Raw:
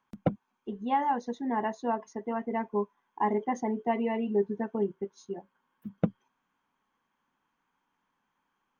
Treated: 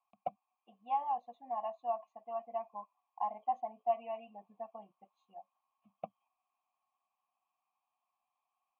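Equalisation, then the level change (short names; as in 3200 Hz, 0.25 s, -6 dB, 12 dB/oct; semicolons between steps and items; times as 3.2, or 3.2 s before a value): vowel filter a; low shelf 440 Hz -4.5 dB; fixed phaser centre 1500 Hz, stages 6; +4.0 dB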